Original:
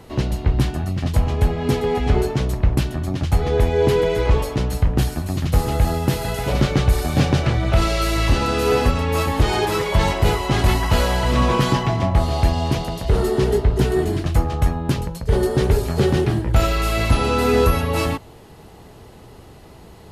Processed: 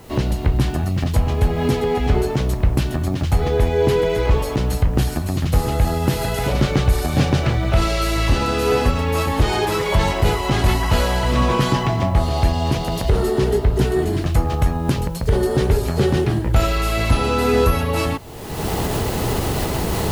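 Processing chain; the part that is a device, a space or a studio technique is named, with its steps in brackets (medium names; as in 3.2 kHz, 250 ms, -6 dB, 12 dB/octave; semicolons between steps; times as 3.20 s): cheap recorder with automatic gain (white noise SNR 37 dB; recorder AGC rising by 39 dB/s)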